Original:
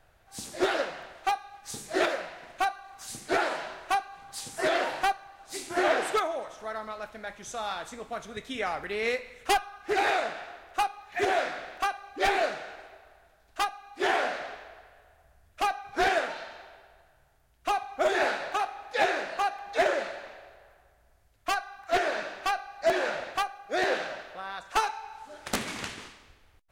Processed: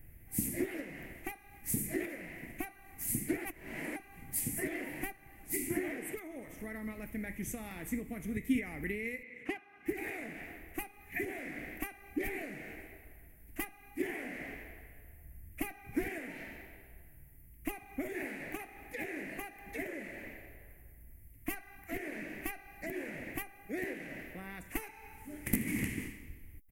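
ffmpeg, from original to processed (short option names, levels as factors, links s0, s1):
-filter_complex "[0:a]asettb=1/sr,asplit=3[s0][s1][s2];[s0]atrim=end=9.234[s3];[s1]atrim=start=9.23:end=9.86,asetpts=PTS-STARTPTS,afade=t=in:d=0.004:c=qsin,afade=t=out:st=0.626:d=0.004:c=qsin,highpass=240,lowpass=3600[s4];[s2]atrim=start=9.856[s5];[s3][s4]acrossfade=d=0.004:c1=hsin:c2=qsin[s6];[s6][s5]acrossfade=d=0.004:c1=qsin:c2=hsin,asplit=3[s7][s8][s9];[s7]atrim=end=3.452[s10];[s8]atrim=start=3.448:end=3.962,asetpts=PTS-STARTPTS,areverse[s11];[s9]atrim=start=3.958[s12];[s10][s11]acrossfade=d=0.004:c1=hsin:c2=hsin[s13];[s13][s12]acrossfade=d=0.004:c1=hsin:c2=hsin,equalizer=f=450:w=3.5:g=11,acompressor=threshold=0.0224:ratio=6,firequalizer=gain_entry='entry(300,0);entry(430,-22);entry(880,-24);entry(1400,-27);entry(2000,-4);entry(3700,-29);entry(12000,7)':delay=0.05:min_phase=1,volume=3.55"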